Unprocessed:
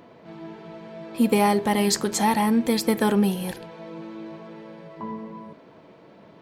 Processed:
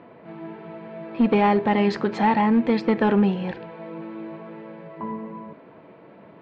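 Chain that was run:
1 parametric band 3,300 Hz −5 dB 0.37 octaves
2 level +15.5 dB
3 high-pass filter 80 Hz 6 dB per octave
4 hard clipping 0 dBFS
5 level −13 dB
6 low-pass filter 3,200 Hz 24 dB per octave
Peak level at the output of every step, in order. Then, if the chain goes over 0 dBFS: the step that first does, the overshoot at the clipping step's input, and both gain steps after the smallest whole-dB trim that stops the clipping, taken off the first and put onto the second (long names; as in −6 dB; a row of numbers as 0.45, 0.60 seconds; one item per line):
−7.5, +8.0, +6.5, 0.0, −13.0, −12.0 dBFS
step 2, 6.5 dB
step 2 +8.5 dB, step 5 −6 dB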